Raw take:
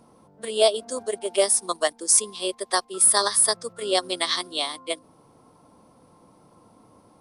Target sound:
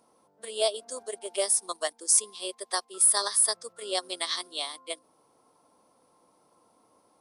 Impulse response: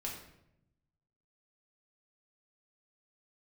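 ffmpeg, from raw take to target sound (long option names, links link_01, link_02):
-af "bass=frequency=250:gain=-14,treble=frequency=4000:gain=4,volume=-7.5dB"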